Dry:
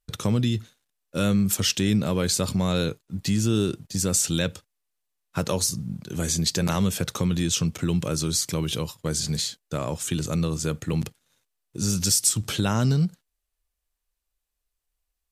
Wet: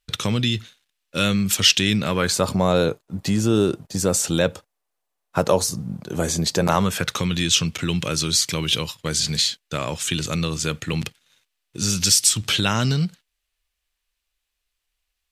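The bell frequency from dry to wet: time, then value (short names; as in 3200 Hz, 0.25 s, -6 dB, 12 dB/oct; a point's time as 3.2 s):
bell +11.5 dB 2.2 oct
1.95 s 2900 Hz
2.51 s 710 Hz
6.65 s 710 Hz
7.22 s 2800 Hz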